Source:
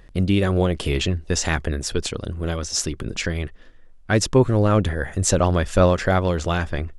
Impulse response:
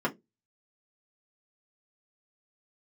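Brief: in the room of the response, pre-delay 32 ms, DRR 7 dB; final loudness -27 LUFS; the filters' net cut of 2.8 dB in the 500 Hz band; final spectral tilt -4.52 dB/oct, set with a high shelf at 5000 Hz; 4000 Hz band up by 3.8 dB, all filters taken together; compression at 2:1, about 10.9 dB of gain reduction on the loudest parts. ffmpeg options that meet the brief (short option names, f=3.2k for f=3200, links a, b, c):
-filter_complex "[0:a]equalizer=f=500:t=o:g=-3.5,equalizer=f=4k:t=o:g=7,highshelf=f=5k:g=-3.5,acompressor=threshold=-32dB:ratio=2,asplit=2[a][b];[1:a]atrim=start_sample=2205,adelay=32[c];[b][c]afir=irnorm=-1:irlink=0,volume=-16.5dB[d];[a][d]amix=inputs=2:normalize=0,volume=2.5dB"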